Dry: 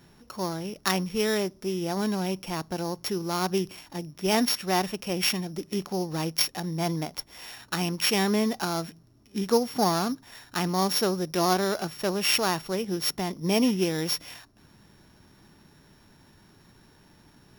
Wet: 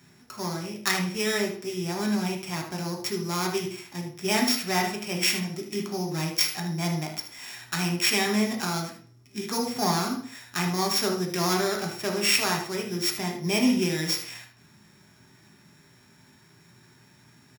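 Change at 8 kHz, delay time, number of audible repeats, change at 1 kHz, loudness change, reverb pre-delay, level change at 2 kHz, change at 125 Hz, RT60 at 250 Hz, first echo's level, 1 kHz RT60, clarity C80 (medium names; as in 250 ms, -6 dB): +2.5 dB, 76 ms, 1, -1.0 dB, +0.5 dB, 3 ms, +3.5 dB, +1.0 dB, 0.45 s, -9.5 dB, 0.45 s, 12.0 dB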